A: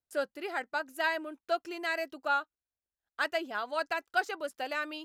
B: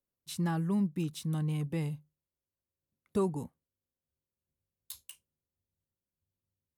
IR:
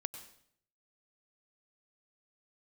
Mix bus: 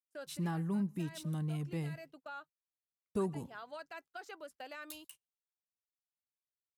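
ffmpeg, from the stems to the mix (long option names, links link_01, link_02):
-filter_complex "[0:a]alimiter=level_in=3dB:limit=-24dB:level=0:latency=1:release=65,volume=-3dB,volume=-10dB[link_01];[1:a]volume=-6dB,asplit=3[link_02][link_03][link_04];[link_03]volume=-13.5dB[link_05];[link_04]apad=whole_len=222514[link_06];[link_01][link_06]sidechaincompress=threshold=-44dB:ratio=8:attack=16:release=314[link_07];[2:a]atrim=start_sample=2205[link_08];[link_05][link_08]afir=irnorm=-1:irlink=0[link_09];[link_07][link_02][link_09]amix=inputs=3:normalize=0,agate=range=-24dB:threshold=-55dB:ratio=16:detection=peak"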